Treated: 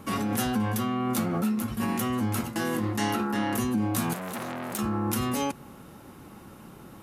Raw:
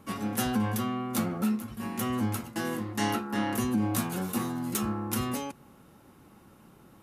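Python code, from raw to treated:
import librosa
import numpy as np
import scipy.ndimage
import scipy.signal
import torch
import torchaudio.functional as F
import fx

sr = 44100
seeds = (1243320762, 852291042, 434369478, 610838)

p1 = fx.over_compress(x, sr, threshold_db=-35.0, ratio=-0.5)
p2 = x + (p1 * 10.0 ** (-1.0 / 20.0))
y = fx.transformer_sat(p2, sr, knee_hz=2400.0, at=(4.13, 4.79))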